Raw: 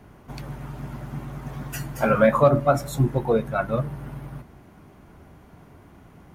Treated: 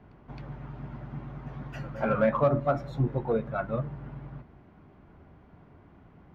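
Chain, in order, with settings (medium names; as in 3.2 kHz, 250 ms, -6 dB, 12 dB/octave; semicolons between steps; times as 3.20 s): distance through air 270 m; pre-echo 266 ms -21 dB; in parallel at -7.5 dB: saturation -17 dBFS, distortion -11 dB; on the sum: trim -8 dB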